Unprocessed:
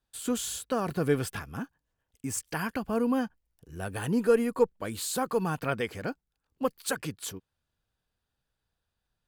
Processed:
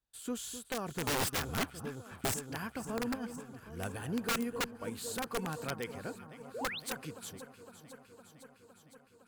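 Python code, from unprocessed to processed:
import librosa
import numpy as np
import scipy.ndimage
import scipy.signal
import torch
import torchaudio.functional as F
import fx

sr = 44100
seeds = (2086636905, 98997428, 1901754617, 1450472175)

y = fx.leveller(x, sr, passes=3, at=(1.07, 2.34))
y = fx.over_compress(y, sr, threshold_db=-31.0, ratio=-0.5, at=(3.14, 3.95), fade=0.02)
y = fx.echo_alternate(y, sr, ms=255, hz=1200.0, feedback_pct=84, wet_db=-12.0)
y = (np.mod(10.0 ** (18.5 / 20.0) * y + 1.0, 2.0) - 1.0) / 10.0 ** (18.5 / 20.0)
y = fx.spec_paint(y, sr, seeds[0], shape='rise', start_s=6.54, length_s=0.26, low_hz=390.0, high_hz=4500.0, level_db=-32.0)
y = F.gain(torch.from_numpy(y), -8.5).numpy()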